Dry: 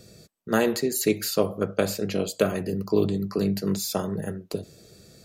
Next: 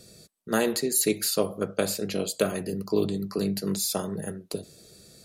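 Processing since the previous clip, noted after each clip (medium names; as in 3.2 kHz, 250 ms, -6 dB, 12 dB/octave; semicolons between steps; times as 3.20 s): fifteen-band graphic EQ 100 Hz -4 dB, 4 kHz +4 dB, 10 kHz +10 dB; trim -2.5 dB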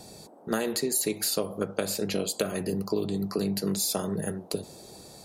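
compression, threshold -27 dBFS, peak gain reduction 9.5 dB; band noise 190–830 Hz -56 dBFS; trim +3 dB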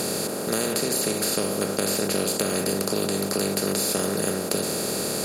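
spectral levelling over time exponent 0.2; trim -4 dB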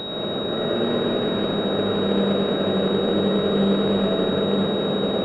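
distance through air 90 m; algorithmic reverb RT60 4.1 s, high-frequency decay 0.7×, pre-delay 35 ms, DRR -8 dB; class-D stage that switches slowly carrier 3.8 kHz; trim -4 dB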